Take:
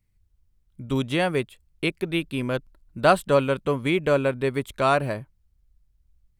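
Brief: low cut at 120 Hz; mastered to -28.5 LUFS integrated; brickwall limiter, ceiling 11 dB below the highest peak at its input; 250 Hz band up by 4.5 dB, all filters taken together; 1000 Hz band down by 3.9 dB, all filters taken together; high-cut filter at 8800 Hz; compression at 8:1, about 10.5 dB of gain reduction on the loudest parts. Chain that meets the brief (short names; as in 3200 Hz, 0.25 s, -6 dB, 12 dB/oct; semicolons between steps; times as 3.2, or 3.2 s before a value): HPF 120 Hz; LPF 8800 Hz; bell 250 Hz +6.5 dB; bell 1000 Hz -6.5 dB; compressor 8:1, threshold -25 dBFS; gain +8 dB; limiter -18 dBFS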